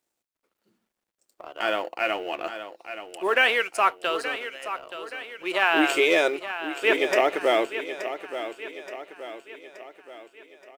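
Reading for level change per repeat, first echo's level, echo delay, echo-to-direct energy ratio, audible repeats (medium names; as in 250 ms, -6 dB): -6.0 dB, -11.0 dB, 875 ms, -10.0 dB, 4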